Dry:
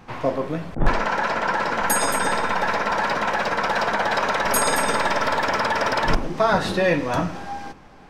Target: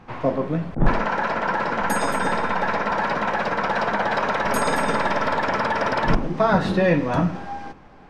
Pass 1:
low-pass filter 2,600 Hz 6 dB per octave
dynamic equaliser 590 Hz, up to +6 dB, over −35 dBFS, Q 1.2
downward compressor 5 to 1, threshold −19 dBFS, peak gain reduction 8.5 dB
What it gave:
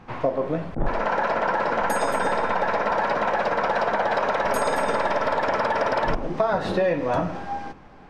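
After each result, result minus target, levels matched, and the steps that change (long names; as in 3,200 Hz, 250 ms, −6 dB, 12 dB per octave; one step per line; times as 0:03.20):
downward compressor: peak gain reduction +8.5 dB; 250 Hz band −4.5 dB
remove: downward compressor 5 to 1, threshold −19 dBFS, peak gain reduction 8.5 dB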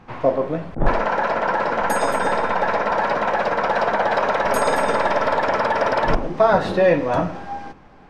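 250 Hz band −4.5 dB
change: dynamic equaliser 180 Hz, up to +6 dB, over −35 dBFS, Q 1.2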